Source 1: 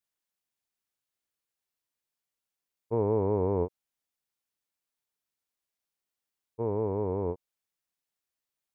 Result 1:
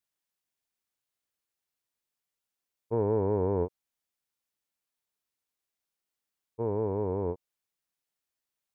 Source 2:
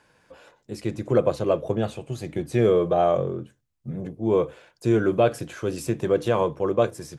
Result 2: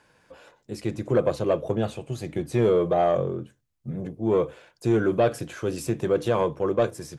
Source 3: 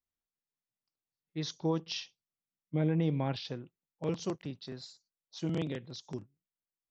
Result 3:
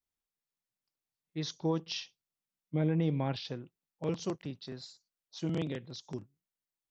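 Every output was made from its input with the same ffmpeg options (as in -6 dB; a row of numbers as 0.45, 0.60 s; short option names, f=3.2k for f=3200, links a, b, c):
-af "asoftclip=type=tanh:threshold=-11.5dB"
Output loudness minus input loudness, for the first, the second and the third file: -0.5, -1.0, 0.0 LU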